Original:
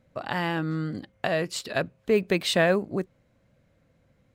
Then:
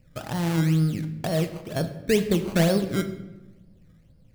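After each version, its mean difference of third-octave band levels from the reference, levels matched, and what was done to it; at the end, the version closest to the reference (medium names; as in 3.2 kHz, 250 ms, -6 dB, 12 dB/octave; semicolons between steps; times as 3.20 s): 9.5 dB: tilt EQ -4 dB/octave; decimation with a swept rate 17×, swing 100% 2.1 Hz; simulated room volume 460 m³, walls mixed, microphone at 0.54 m; trim -5 dB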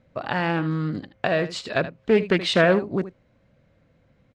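3.5 dB: low-pass 4.9 kHz 12 dB/octave; delay 77 ms -14 dB; loudspeaker Doppler distortion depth 0.18 ms; trim +3.5 dB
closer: second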